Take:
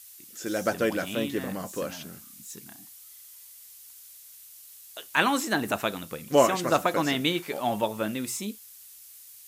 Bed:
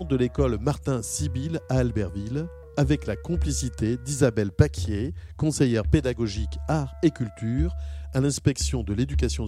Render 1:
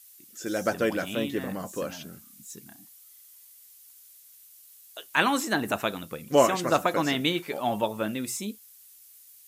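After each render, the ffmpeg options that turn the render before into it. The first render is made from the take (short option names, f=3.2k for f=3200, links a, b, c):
-af "afftdn=nr=6:nf=-49"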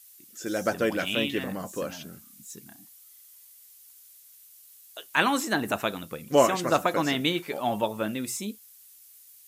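-filter_complex "[0:a]asettb=1/sr,asplit=3[a][b][c];[a]atrim=end=0.994[d];[b]atrim=start=0.99:end=1.44,asetpts=PTS-STARTPTS,afade=t=in:d=0.004:c=qsin,afade=t=out:st=0.446:d=0.004:c=qsin,equalizer=f=2.8k:t=o:w=0.93:g=10.5[e];[c]atrim=start=1.436[f];[d][e]acrossfade=d=0.004:c1=hsin:c2=qsin[g];[g][f]acrossfade=d=0.004:c1=qsin:c2=hsin"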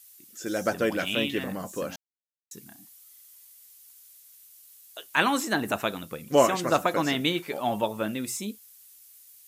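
-filter_complex "[0:a]asplit=3[a][b][c];[a]atrim=end=1.96,asetpts=PTS-STARTPTS,afade=t=out:st=1.956:d=0.004:c=hsin[d];[b]atrim=start=1.96:end=2.51,asetpts=PTS-STARTPTS,volume=0[e];[c]atrim=start=2.51,asetpts=PTS-STARTPTS,afade=t=in:d=0.004:c=hsin[f];[d][e][f]concat=n=3:v=0:a=1"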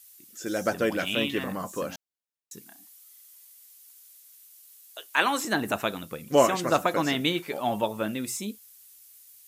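-filter_complex "[0:a]asettb=1/sr,asplit=3[a][b][c];[a]atrim=end=1.214[d];[b]atrim=start=1.21:end=1.82,asetpts=PTS-STARTPTS,afade=t=in:d=0.004:c=qsin,afade=t=out:st=0.606:d=0.004:c=qsin,equalizer=f=1.1k:t=o:w=0.54:g=7[e];[c]atrim=start=1.816[f];[d][e]acrossfade=d=0.004:c1=hsin:c2=qsin[g];[g][f]acrossfade=d=0.004:c1=qsin:c2=hsin,asettb=1/sr,asplit=3[h][i][j];[h]atrim=end=2.624[k];[i]atrim=start=2.62:end=5.45,asetpts=PTS-STARTPTS,afade=t=in:d=0.004:c=qsin,afade=t=out:st=2.826:d=0.004:c=qsin,highpass=340[l];[j]atrim=start=5.446[m];[k][l]acrossfade=d=0.004:c1=hsin:c2=qsin[n];[n][m]acrossfade=d=0.004:c1=qsin:c2=hsin"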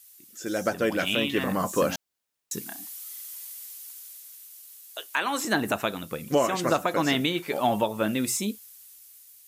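-af "dynaudnorm=f=440:g=7:m=15.5dB,alimiter=limit=-12dB:level=0:latency=1:release=386"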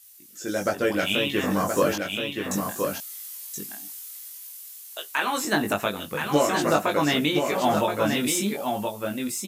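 -filter_complex "[0:a]asplit=2[a][b];[b]adelay=20,volume=-3dB[c];[a][c]amix=inputs=2:normalize=0,asplit=2[d][e];[e]aecho=0:1:1024:0.562[f];[d][f]amix=inputs=2:normalize=0"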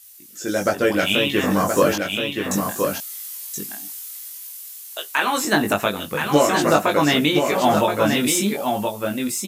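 -af "volume=5dB"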